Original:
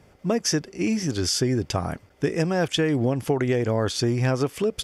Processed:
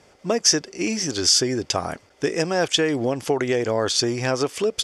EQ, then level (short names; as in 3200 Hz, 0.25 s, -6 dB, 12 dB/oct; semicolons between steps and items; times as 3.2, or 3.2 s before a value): LPF 8600 Hz 12 dB/oct; tone controls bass -11 dB, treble +13 dB; high shelf 6600 Hz -11 dB; +3.5 dB